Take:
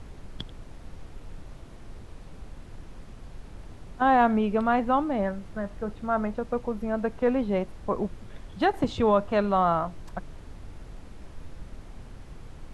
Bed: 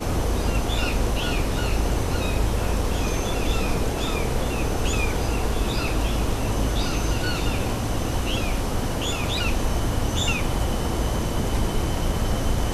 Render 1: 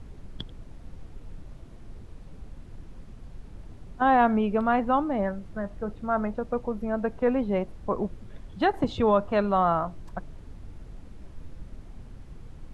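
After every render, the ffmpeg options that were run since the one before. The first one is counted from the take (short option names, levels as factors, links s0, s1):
-af "afftdn=nr=6:nf=-45"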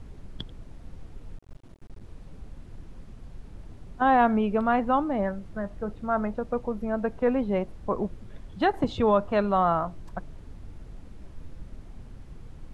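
-filter_complex "[0:a]asettb=1/sr,asplit=3[s0][s1][s2];[s0]atrim=end=1.374[s3];[s1]atrim=start=1.37:end=2.03,asetpts=PTS-STARTPTS,afade=t=in:d=0.004:c=qsin,afade=t=out:st=0.656:d=0.004:c=qsin,aeval=exprs='max(val(0),0)':c=same[s4];[s2]atrim=start=2.026[s5];[s3][s4]acrossfade=d=0.004:c1=hsin:c2=qsin[s6];[s6][s5]acrossfade=d=0.004:c1=qsin:c2=hsin"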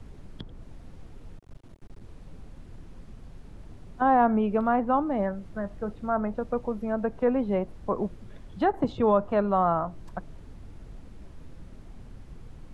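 -filter_complex "[0:a]acrossover=split=110|1600[s0][s1][s2];[s0]alimiter=level_in=4.73:limit=0.0631:level=0:latency=1:release=103,volume=0.211[s3];[s2]acompressor=threshold=0.00398:ratio=6[s4];[s3][s1][s4]amix=inputs=3:normalize=0"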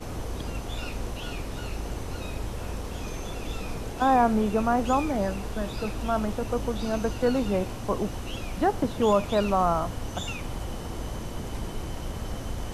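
-filter_complex "[1:a]volume=0.299[s0];[0:a][s0]amix=inputs=2:normalize=0"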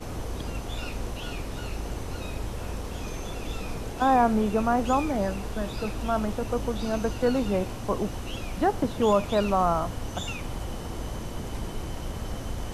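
-af anull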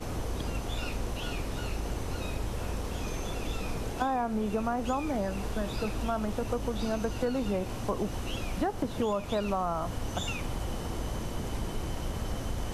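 -af "acompressor=threshold=0.0501:ratio=6"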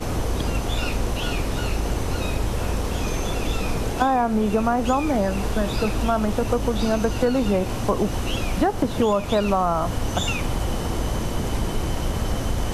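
-af "volume=2.99"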